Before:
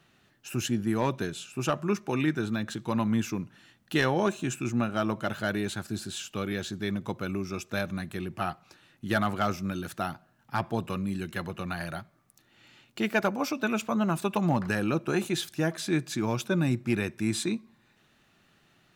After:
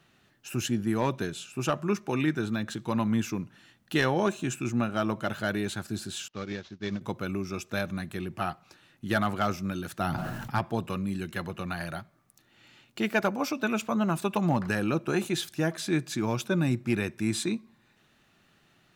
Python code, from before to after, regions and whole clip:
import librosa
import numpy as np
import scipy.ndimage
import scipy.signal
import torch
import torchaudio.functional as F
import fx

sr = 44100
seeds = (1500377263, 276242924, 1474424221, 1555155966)

y = fx.chain(x, sr, fx.cvsd(bps=32000),
    fx.upward_expand(threshold_db=-43.0, expansion=2.5), at=(6.28, 7.01))
y = fx.chain(y, sr, fx.low_shelf(hz=210.0, db=6.5),
    fx.sustainer(db_per_s=28.0), at=(10.0, 10.59))